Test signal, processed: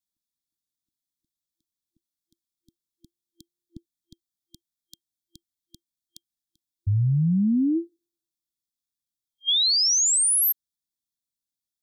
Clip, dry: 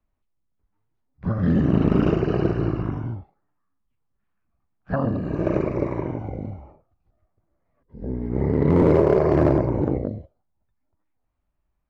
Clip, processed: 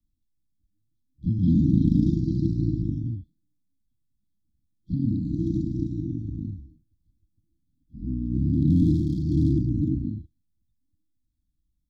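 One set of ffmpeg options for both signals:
ffmpeg -i in.wav -filter_complex "[0:a]afftfilt=real='re*(1-between(b*sr/4096,340,3200))':imag='im*(1-between(b*sr/4096,340,3200))':win_size=4096:overlap=0.75,acrossover=split=350|1700[link_01][link_02][link_03];[link_02]alimiter=level_in=6.5dB:limit=-24dB:level=0:latency=1:release=209,volume=-6.5dB[link_04];[link_01][link_04][link_03]amix=inputs=3:normalize=0" out.wav

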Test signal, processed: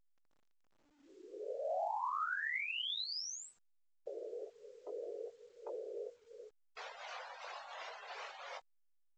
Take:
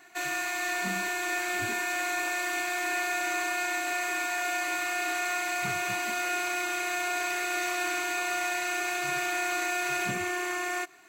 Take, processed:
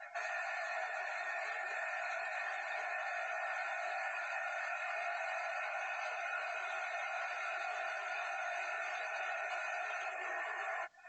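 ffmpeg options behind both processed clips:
ffmpeg -i in.wav -af "tremolo=f=2.8:d=0.5,afftfilt=real='hypot(re,im)*cos(2*PI*random(0))':imag='hypot(re,im)*sin(2*PI*random(1))':win_size=512:overlap=0.75,alimiter=level_in=10dB:limit=-24dB:level=0:latency=1:release=16,volume=-10dB,acompressor=threshold=-55dB:ratio=3,flanger=delay=18.5:depth=3.1:speed=0.3,acontrast=42,highpass=frequency=560:width=0.5412,highpass=frequency=560:width=1.3066,afftdn=noise_reduction=34:noise_floor=-59,lowpass=4400,equalizer=frequency=2600:width_type=o:width=2.2:gain=-3,volume=14dB" -ar 16000 -c:a pcm_alaw out.wav

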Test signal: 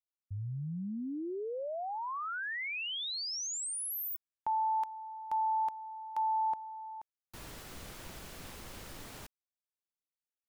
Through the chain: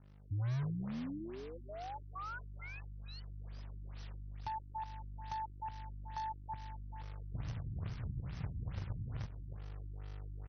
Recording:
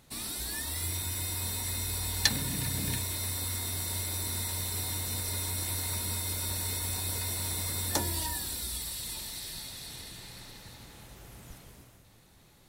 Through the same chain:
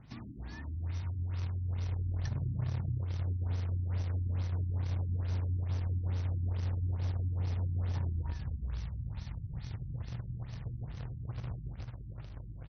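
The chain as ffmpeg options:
ffmpeg -i in.wav -filter_complex "[0:a]highpass=66,asplit=2[link_01][link_02];[link_02]aecho=0:1:311|622:0.178|0.0391[link_03];[link_01][link_03]amix=inputs=2:normalize=0,aeval=exprs='val(0)+0.000794*(sin(2*PI*50*n/s)+sin(2*PI*2*50*n/s)/2+sin(2*PI*3*50*n/s)/3+sin(2*PI*4*50*n/s)/4+sin(2*PI*5*50*n/s)/5)':channel_layout=same,asubboost=boost=11.5:cutoff=92,aeval=exprs='0.531*(cos(1*acos(clip(val(0)/0.531,-1,1)))-cos(1*PI/2))+0.0106*(cos(4*acos(clip(val(0)/0.531,-1,1)))-cos(4*PI/2))+0.0106*(cos(8*acos(clip(val(0)/0.531,-1,1)))-cos(8*PI/2))':channel_layout=same,equalizer=frequency=125:width_type=o:width=1:gain=10,equalizer=frequency=250:width_type=o:width=1:gain=4,equalizer=frequency=500:width_type=o:width=1:gain=-9,equalizer=frequency=4000:width_type=o:width=1:gain=-10,equalizer=frequency=8000:width_type=o:width=1:gain=3,acompressor=threshold=-20dB:ratio=20:attack=18:release=496:knee=6:detection=rms,acrusher=bits=2:mode=log:mix=0:aa=0.000001,acrossover=split=1500|6700[link_04][link_05][link_06];[link_04]acompressor=threshold=-47dB:ratio=1.5[link_07];[link_05]acompressor=threshold=-55dB:ratio=5[link_08];[link_06]acompressor=threshold=-53dB:ratio=2[link_09];[link_07][link_08][link_09]amix=inputs=3:normalize=0,afftfilt=real='re*lt(b*sr/1024,330*pow(6400/330,0.5+0.5*sin(2*PI*2.3*pts/sr)))':imag='im*lt(b*sr/1024,330*pow(6400/330,0.5+0.5*sin(2*PI*2.3*pts/sr)))':win_size=1024:overlap=0.75" out.wav

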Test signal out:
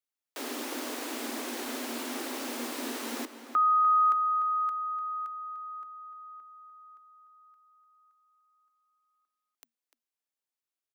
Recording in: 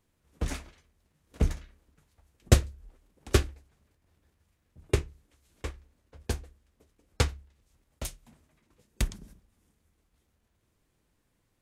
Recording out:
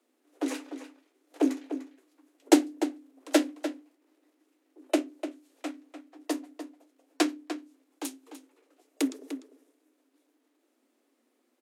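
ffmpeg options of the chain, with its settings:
ffmpeg -i in.wav -filter_complex "[0:a]afreqshift=230,asplit=2[link_01][link_02];[link_02]adelay=297.4,volume=-10dB,highshelf=frequency=4000:gain=-6.69[link_03];[link_01][link_03]amix=inputs=2:normalize=0" out.wav

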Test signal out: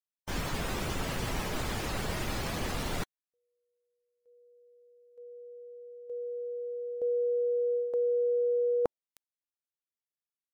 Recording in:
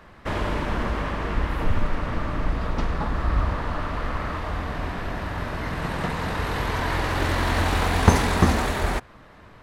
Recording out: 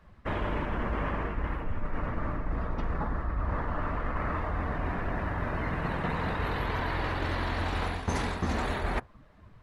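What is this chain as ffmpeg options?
ffmpeg -i in.wav -af "afftdn=noise_reduction=14:noise_floor=-39,areverse,acompressor=threshold=-26dB:ratio=16,areverse" out.wav

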